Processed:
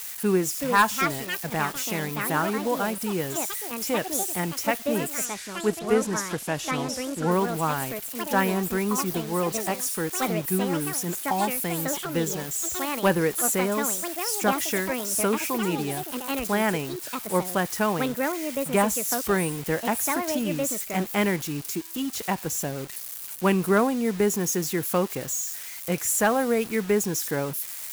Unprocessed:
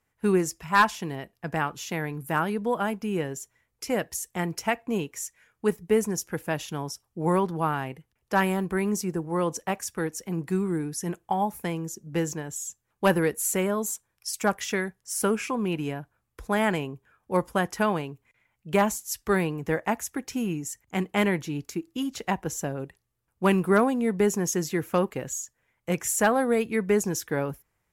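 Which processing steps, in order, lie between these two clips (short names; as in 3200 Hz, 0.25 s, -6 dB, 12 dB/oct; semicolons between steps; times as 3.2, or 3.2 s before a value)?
switching spikes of -27.5 dBFS; bit-crush 7-bit; echoes that change speed 0.438 s, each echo +5 st, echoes 2, each echo -6 dB; 5.25–7.31 LPF 8500 Hz 12 dB/oct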